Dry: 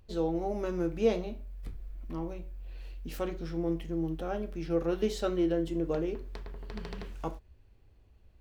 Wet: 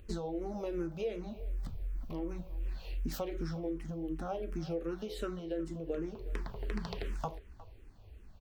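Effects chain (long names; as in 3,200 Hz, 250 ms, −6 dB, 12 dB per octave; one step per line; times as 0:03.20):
downward compressor 16 to 1, threshold −40 dBFS, peak gain reduction 20.5 dB
far-end echo of a speakerphone 360 ms, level −17 dB
frequency shifter mixed with the dry sound −2.7 Hz
level +9.5 dB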